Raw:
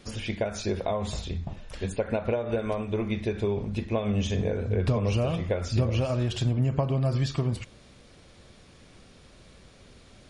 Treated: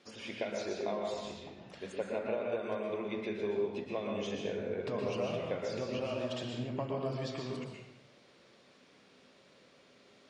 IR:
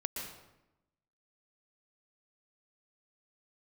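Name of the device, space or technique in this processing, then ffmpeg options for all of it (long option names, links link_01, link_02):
supermarket ceiling speaker: -filter_complex "[0:a]highpass=280,lowpass=6000[link_01];[1:a]atrim=start_sample=2205[link_02];[link_01][link_02]afir=irnorm=-1:irlink=0,volume=-7dB"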